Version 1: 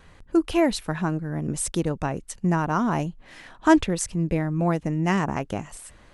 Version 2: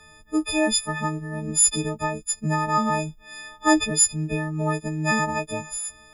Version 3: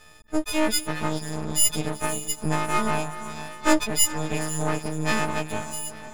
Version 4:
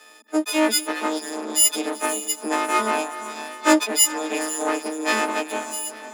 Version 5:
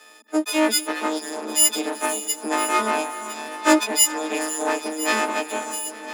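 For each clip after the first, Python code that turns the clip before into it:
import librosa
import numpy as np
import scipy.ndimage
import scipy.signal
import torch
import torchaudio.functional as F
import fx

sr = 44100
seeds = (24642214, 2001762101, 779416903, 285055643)

y1 = fx.freq_snap(x, sr, grid_st=6)
y1 = y1 * 10.0 ** (-2.5 / 20.0)
y2 = fx.echo_diffused(y1, sr, ms=474, feedback_pct=42, wet_db=-12)
y2 = np.maximum(y2, 0.0)
y2 = y2 * 10.0 ** (2.0 / 20.0)
y3 = scipy.signal.sosfilt(scipy.signal.butter(16, 230.0, 'highpass', fs=sr, output='sos'), y2)
y3 = y3 * 10.0 ** (4.0 / 20.0)
y4 = y3 + 10.0 ** (-14.5 / 20.0) * np.pad(y3, (int(1008 * sr / 1000.0), 0))[:len(y3)]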